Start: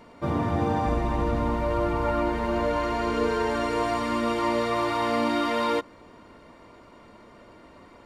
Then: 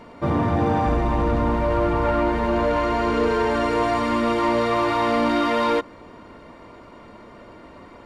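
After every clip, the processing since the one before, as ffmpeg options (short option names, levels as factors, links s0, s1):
-af "highshelf=f=4700:g=-7,asoftclip=type=tanh:threshold=0.106,volume=2.11"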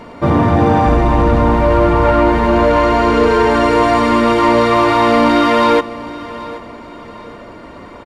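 -af "aecho=1:1:775|1550|2325:0.141|0.0494|0.0173,volume=2.82"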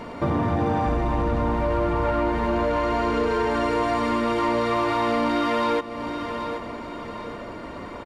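-af "acompressor=threshold=0.0631:ratio=2.5,volume=0.841"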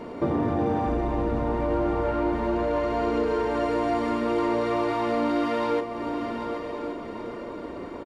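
-filter_complex "[0:a]equalizer=f=370:t=o:w=1.4:g=10,asplit=2[s0][s1];[s1]adelay=33,volume=0.335[s2];[s0][s2]amix=inputs=2:normalize=0,aecho=1:1:1121:0.266,volume=0.447"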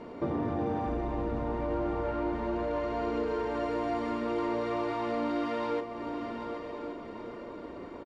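-af "lowpass=7300,volume=0.473"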